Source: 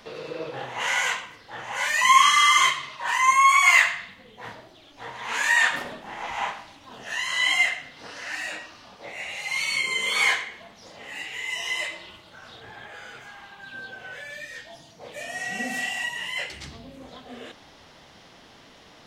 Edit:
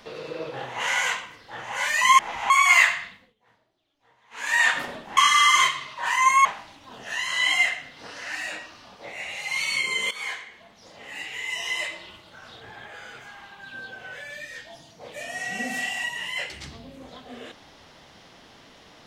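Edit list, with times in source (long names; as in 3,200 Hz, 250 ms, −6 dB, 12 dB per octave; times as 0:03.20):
0:02.19–0:03.47: swap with 0:06.14–0:06.45
0:04.01–0:05.57: duck −24 dB, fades 0.30 s
0:10.11–0:11.25: fade in, from −15.5 dB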